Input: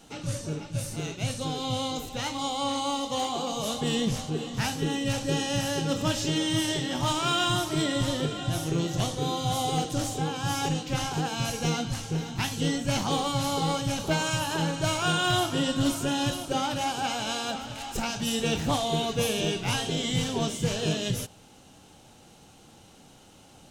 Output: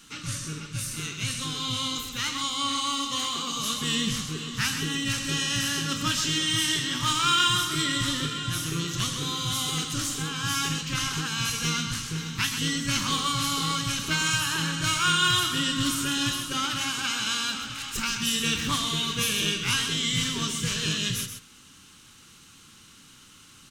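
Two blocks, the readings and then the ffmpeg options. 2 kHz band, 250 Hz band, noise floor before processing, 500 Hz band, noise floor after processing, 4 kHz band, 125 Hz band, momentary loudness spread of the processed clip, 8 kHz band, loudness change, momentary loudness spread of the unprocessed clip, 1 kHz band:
+5.5 dB, -2.5 dB, -54 dBFS, -11.0 dB, -52 dBFS, +5.5 dB, -2.5 dB, 7 LU, +5.5 dB, +2.5 dB, 6 LU, -1.0 dB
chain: -filter_complex "[0:a]firequalizer=gain_entry='entry(270,0);entry(720,-18);entry(1100,8)':delay=0.05:min_phase=1,asplit=2[a][b];[b]aecho=0:1:129:0.398[c];[a][c]amix=inputs=2:normalize=0,volume=-3dB"

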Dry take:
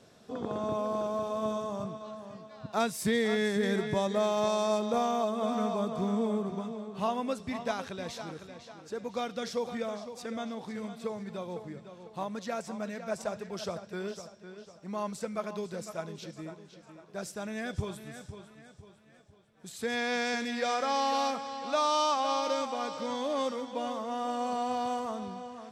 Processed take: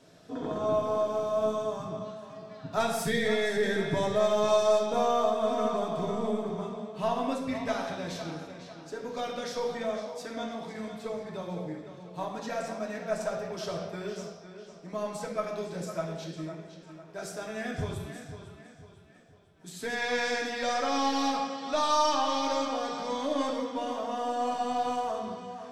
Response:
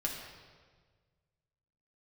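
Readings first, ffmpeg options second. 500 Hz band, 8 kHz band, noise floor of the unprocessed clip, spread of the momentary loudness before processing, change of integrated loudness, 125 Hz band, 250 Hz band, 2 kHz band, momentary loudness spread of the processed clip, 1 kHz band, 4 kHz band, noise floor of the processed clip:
+3.0 dB, +1.5 dB, -57 dBFS, 16 LU, +2.0 dB, +2.0 dB, -0.5 dB, +2.5 dB, 15 LU, +1.5 dB, +2.0 dB, -52 dBFS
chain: -filter_complex "[0:a]aeval=exprs='0.126*(cos(1*acos(clip(val(0)/0.126,-1,1)))-cos(1*PI/2))+0.00631*(cos(2*acos(clip(val(0)/0.126,-1,1)))-cos(2*PI/2))+0.002*(cos(6*acos(clip(val(0)/0.126,-1,1)))-cos(6*PI/2))+0.00158*(cos(8*acos(clip(val(0)/0.126,-1,1)))-cos(8*PI/2))':c=same[a];[1:a]atrim=start_sample=2205,afade=t=out:st=0.34:d=0.01,atrim=end_sample=15435,asetrate=48510,aresample=44100[b];[a][b]afir=irnorm=-1:irlink=0"

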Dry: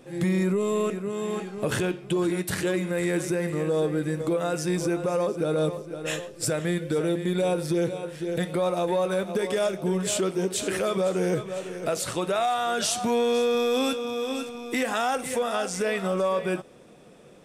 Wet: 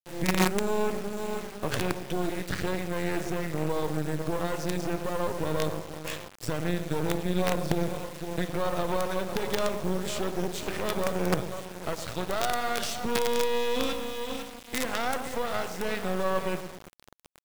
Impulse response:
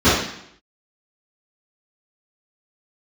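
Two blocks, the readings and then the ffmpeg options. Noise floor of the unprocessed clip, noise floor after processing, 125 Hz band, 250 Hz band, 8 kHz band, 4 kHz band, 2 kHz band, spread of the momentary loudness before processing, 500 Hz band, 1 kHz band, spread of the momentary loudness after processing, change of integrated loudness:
-49 dBFS, -49 dBFS, -2.5 dB, -4.5 dB, -5.5 dB, -2.0 dB, -1.5 dB, 6 LU, -5.0 dB, -2.0 dB, 7 LU, -4.0 dB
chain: -filter_complex "[0:a]asplit=2[a][b];[b]adelay=111,lowpass=f=1.1k:p=1,volume=-7.5dB,asplit=2[c][d];[d]adelay=111,lowpass=f=1.1k:p=1,volume=0.47,asplit=2[e][f];[f]adelay=111,lowpass=f=1.1k:p=1,volume=0.47,asplit=2[g][h];[h]adelay=111,lowpass=f=1.1k:p=1,volume=0.47,asplit=2[i][j];[j]adelay=111,lowpass=f=1.1k:p=1,volume=0.47[k];[a][c][e][g][i][k]amix=inputs=6:normalize=0,acrossover=split=110|1200|6600[l][m][n][o];[o]acompressor=threshold=-54dB:ratio=6[p];[l][m][n][p]amix=inputs=4:normalize=0,asubboost=boost=3.5:cutoff=120,acrusher=bits=4:dc=4:mix=0:aa=0.000001"

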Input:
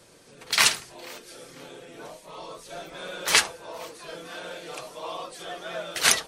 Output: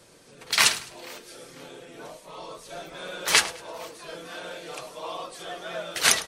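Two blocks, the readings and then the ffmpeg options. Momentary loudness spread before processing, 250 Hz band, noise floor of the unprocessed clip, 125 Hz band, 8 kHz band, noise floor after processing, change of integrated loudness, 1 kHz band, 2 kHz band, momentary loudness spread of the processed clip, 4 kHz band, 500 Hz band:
22 LU, 0.0 dB, -52 dBFS, 0.0 dB, 0.0 dB, -52 dBFS, 0.0 dB, 0.0 dB, 0.0 dB, 22 LU, 0.0 dB, 0.0 dB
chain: -af "aecho=1:1:104|208|312:0.126|0.0415|0.0137"

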